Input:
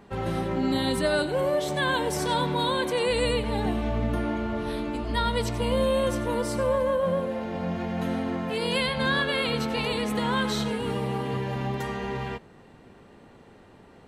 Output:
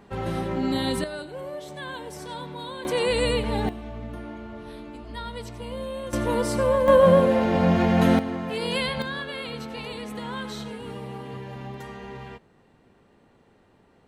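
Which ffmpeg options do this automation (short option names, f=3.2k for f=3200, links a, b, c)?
-af "asetnsamples=n=441:p=0,asendcmd='1.04 volume volume -10.5dB;2.85 volume volume 1.5dB;3.69 volume volume -9.5dB;6.13 volume volume 3dB;6.88 volume volume 10dB;8.19 volume volume -0.5dB;9.02 volume volume -7.5dB',volume=0dB"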